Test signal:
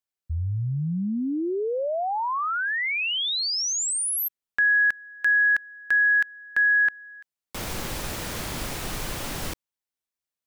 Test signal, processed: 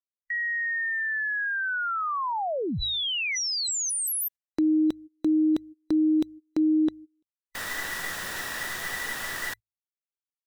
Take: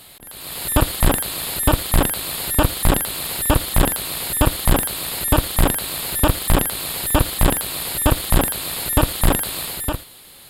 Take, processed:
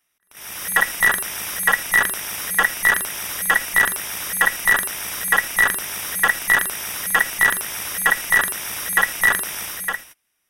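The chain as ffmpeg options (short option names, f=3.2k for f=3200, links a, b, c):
-af "afftfilt=real='real(if(between(b,1,1012),(2*floor((b-1)/92)+1)*92-b,b),0)':imag='imag(if(between(b,1,1012),(2*floor((b-1)/92)+1)*92-b,b),0)*if(between(b,1,1012),-1,1)':win_size=2048:overlap=0.75,bandreject=f=53.57:t=h:w=4,bandreject=f=107.14:t=h:w=4,agate=range=-26dB:threshold=-34dB:ratio=16:release=178:detection=rms,volume=-2dB"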